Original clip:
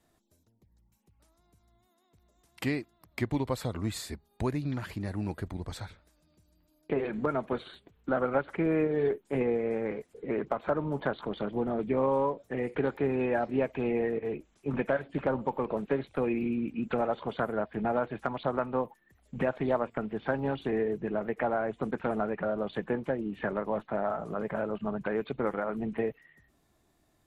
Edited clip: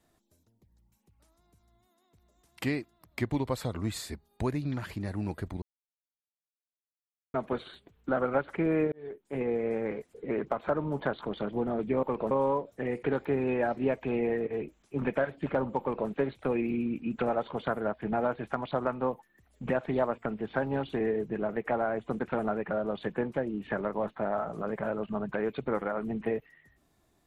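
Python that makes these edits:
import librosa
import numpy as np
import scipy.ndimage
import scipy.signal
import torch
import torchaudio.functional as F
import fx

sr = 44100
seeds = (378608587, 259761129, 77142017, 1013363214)

y = fx.edit(x, sr, fx.silence(start_s=5.62, length_s=1.72),
    fx.fade_in_span(start_s=8.92, length_s=0.71),
    fx.duplicate(start_s=15.53, length_s=0.28, to_s=12.03), tone=tone)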